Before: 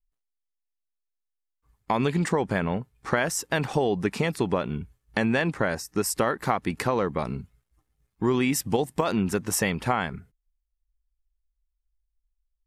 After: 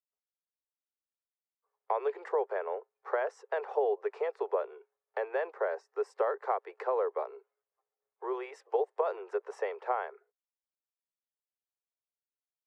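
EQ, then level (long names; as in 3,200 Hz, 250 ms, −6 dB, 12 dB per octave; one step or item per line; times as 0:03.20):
Butterworth high-pass 400 Hz 96 dB per octave
head-to-tape spacing loss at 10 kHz 42 dB
parametric band 3,100 Hz −9.5 dB 1.9 octaves
0.0 dB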